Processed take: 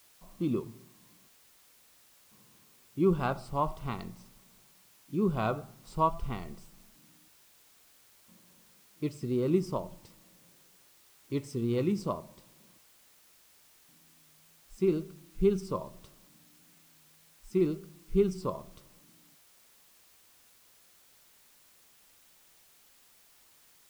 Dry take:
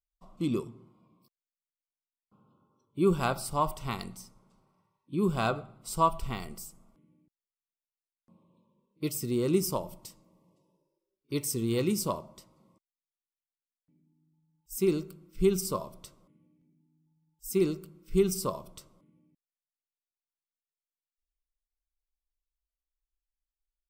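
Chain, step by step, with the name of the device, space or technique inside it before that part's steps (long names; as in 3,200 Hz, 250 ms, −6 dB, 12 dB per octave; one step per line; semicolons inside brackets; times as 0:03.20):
cassette deck with a dirty head (head-to-tape spacing loss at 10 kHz 23 dB; tape wow and flutter; white noise bed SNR 26 dB)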